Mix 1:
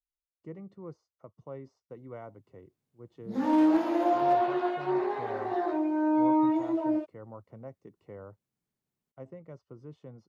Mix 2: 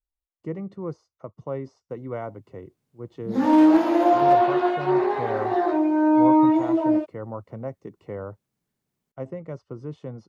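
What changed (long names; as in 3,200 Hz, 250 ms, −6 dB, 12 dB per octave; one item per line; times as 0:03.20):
speech +11.5 dB
background +7.5 dB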